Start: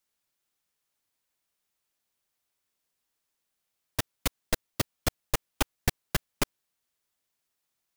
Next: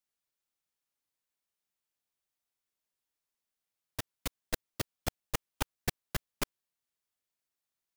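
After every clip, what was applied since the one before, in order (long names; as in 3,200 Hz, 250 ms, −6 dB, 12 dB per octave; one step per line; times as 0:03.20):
noise gate −23 dBFS, range −10 dB
in parallel at −0.5 dB: compressor whose output falls as the input rises −31 dBFS
on the sum: level −5 dB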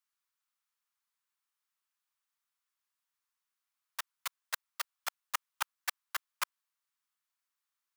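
four-pole ladder high-pass 940 Hz, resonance 45%
level +8.5 dB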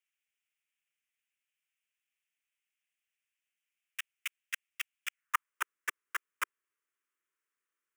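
running median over 3 samples
phaser with its sweep stopped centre 1,800 Hz, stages 4
high-pass filter sweep 2,600 Hz → 390 Hz, 0:05.10–0:05.60
level +3 dB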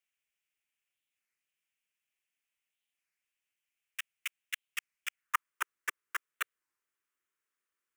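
wow of a warped record 33 1/3 rpm, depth 250 cents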